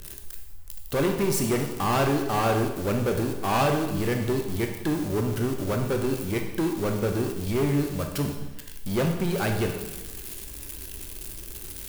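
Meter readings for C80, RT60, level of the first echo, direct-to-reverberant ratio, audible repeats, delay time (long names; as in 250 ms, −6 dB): 8.0 dB, 1.1 s, no echo audible, 3.0 dB, no echo audible, no echo audible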